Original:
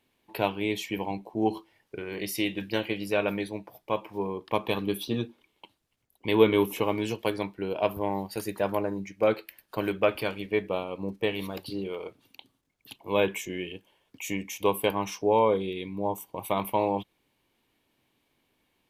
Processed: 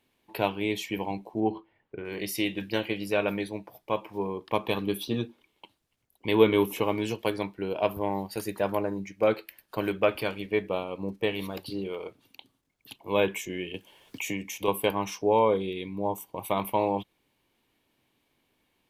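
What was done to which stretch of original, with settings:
0:01.40–0:02.05: high-frequency loss of the air 450 metres
0:13.74–0:14.68: multiband upward and downward compressor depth 70%

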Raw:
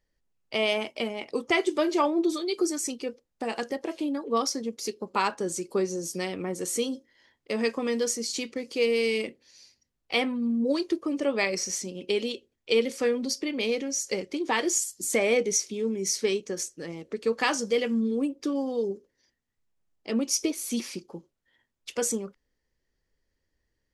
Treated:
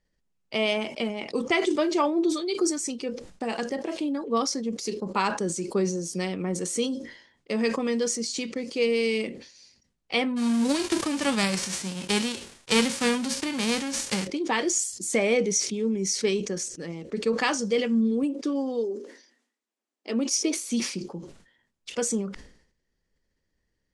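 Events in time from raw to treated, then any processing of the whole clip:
0:10.36–0:14.26: spectral envelope flattened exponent 0.3
0:18.23–0:20.67: linear-phase brick-wall high-pass 220 Hz
whole clip: Butterworth low-pass 10,000 Hz 36 dB per octave; parametric band 190 Hz +6.5 dB 0.54 octaves; level that may fall only so fast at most 89 dB per second

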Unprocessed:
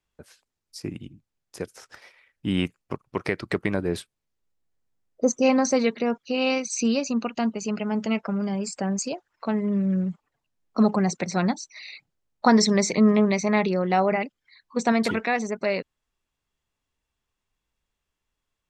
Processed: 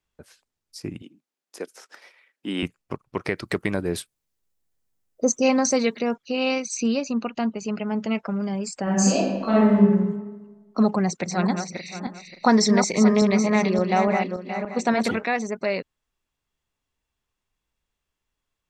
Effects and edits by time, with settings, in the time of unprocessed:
0:01.02–0:02.63: high-pass filter 240 Hz 24 dB per octave
0:03.36–0:06.16: high-shelf EQ 6,300 Hz +10.5 dB
0:06.77–0:08.15: high-shelf EQ 7,600 Hz −10.5 dB
0:08.83–0:09.75: thrown reverb, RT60 1.3 s, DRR −8.5 dB
0:10.92–0:15.24: feedback delay that plays each chunk backwards 287 ms, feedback 45%, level −6 dB

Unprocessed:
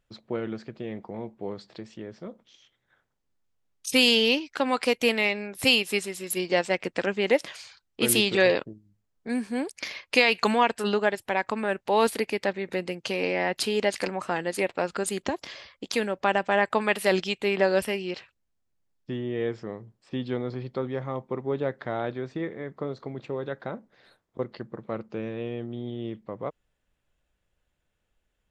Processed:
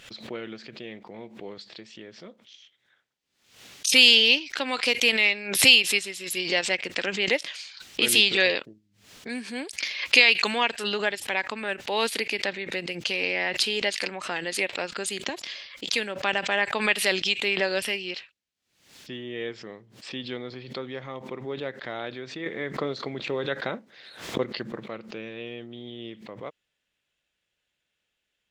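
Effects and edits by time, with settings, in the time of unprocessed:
0:22.46–0:24.86: clip gain +8 dB
whole clip: meter weighting curve D; background raised ahead of every attack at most 95 dB per second; level −5 dB

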